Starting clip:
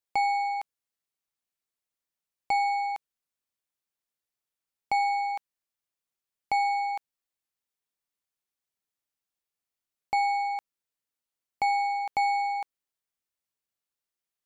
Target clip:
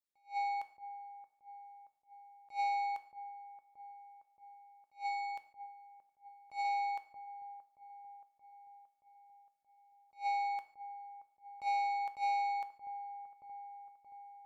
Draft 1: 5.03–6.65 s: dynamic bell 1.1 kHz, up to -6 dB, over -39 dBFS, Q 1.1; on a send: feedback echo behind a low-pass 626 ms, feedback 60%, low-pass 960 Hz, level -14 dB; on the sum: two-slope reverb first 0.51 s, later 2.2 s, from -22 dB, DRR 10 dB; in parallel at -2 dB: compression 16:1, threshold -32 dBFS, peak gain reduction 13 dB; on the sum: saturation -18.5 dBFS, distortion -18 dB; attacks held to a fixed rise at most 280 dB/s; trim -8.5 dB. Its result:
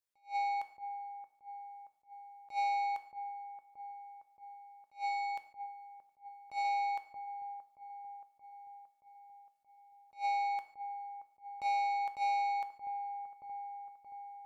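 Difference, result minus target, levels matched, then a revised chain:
compression: peak gain reduction +13 dB
5.03–6.65 s: dynamic bell 1.1 kHz, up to -6 dB, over -39 dBFS, Q 1.1; on a send: feedback echo behind a low-pass 626 ms, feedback 60%, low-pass 960 Hz, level -14 dB; on the sum: two-slope reverb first 0.51 s, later 2.2 s, from -22 dB, DRR 10 dB; saturation -18.5 dBFS, distortion -20 dB; attacks held to a fixed rise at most 280 dB/s; trim -8.5 dB

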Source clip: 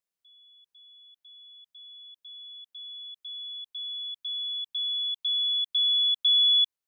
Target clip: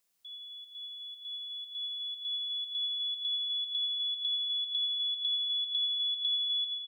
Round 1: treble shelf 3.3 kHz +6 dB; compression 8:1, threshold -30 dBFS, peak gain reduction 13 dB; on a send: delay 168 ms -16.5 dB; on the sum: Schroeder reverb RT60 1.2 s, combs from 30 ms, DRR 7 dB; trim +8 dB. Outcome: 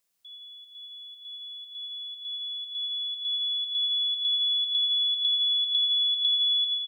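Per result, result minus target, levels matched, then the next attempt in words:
compression: peak gain reduction -7 dB; echo 83 ms early
treble shelf 3.3 kHz +6 dB; compression 8:1, threshold -38 dBFS, peak gain reduction 20 dB; on a send: delay 168 ms -16.5 dB; on the sum: Schroeder reverb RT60 1.2 s, combs from 30 ms, DRR 7 dB; trim +8 dB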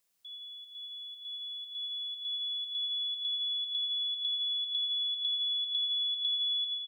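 echo 83 ms early
treble shelf 3.3 kHz +6 dB; compression 8:1, threshold -38 dBFS, peak gain reduction 20 dB; on a send: delay 251 ms -16.5 dB; on the sum: Schroeder reverb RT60 1.2 s, combs from 30 ms, DRR 7 dB; trim +8 dB

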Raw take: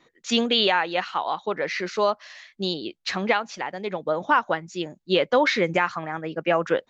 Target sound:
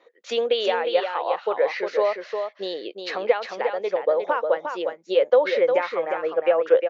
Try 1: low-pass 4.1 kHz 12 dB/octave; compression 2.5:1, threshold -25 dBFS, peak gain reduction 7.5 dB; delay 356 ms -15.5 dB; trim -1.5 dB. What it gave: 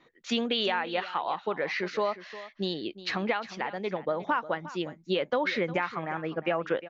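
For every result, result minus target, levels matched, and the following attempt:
echo-to-direct -9.5 dB; 500 Hz band -4.0 dB
low-pass 4.1 kHz 12 dB/octave; compression 2.5:1, threshold -25 dBFS, peak gain reduction 7.5 dB; delay 356 ms -6 dB; trim -1.5 dB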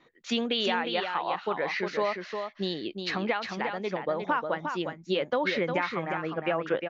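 500 Hz band -4.0 dB
low-pass 4.1 kHz 12 dB/octave; compression 2.5:1, threshold -25 dBFS, peak gain reduction 7.5 dB; resonant high-pass 500 Hz, resonance Q 4.5; delay 356 ms -6 dB; trim -1.5 dB

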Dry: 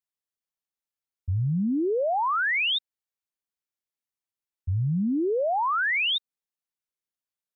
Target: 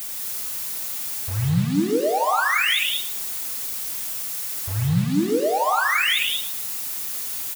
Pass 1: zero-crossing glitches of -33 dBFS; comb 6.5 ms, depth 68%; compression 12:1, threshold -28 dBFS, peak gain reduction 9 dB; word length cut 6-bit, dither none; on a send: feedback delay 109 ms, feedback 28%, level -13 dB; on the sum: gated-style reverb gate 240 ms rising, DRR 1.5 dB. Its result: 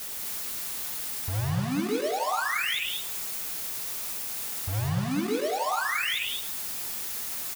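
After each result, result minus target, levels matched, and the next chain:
compression: peak gain reduction +9 dB; zero-crossing glitches: distortion -6 dB
zero-crossing glitches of -33 dBFS; comb 6.5 ms, depth 68%; word length cut 6-bit, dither none; on a send: feedback delay 109 ms, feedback 28%, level -13 dB; on the sum: gated-style reverb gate 240 ms rising, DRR 1.5 dB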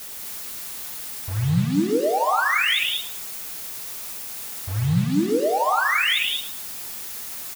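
zero-crossing glitches: distortion -6 dB
zero-crossing glitches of -27 dBFS; comb 6.5 ms, depth 68%; word length cut 6-bit, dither none; on a send: feedback delay 109 ms, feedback 28%, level -13 dB; on the sum: gated-style reverb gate 240 ms rising, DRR 1.5 dB

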